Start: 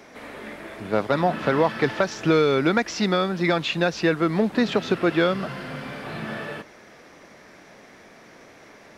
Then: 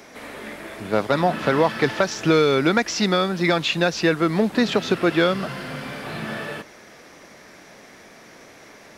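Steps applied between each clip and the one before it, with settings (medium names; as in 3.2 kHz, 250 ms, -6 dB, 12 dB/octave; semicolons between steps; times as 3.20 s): treble shelf 4.6 kHz +7.5 dB; trim +1.5 dB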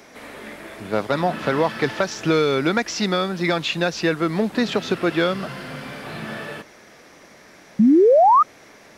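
painted sound rise, 7.79–8.43 s, 200–1300 Hz -11 dBFS; trim -1.5 dB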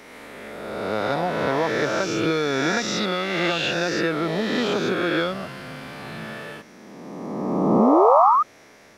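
reverse spectral sustain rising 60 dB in 1.96 s; trim -6 dB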